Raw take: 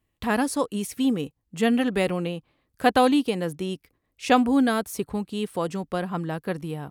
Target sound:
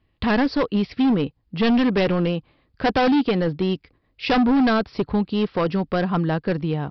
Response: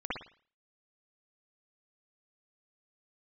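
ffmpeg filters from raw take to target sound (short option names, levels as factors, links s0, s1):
-af "aresample=11025,volume=14.1,asoftclip=hard,volume=0.0708,aresample=44100,lowshelf=f=160:g=3.5,volume=2.24"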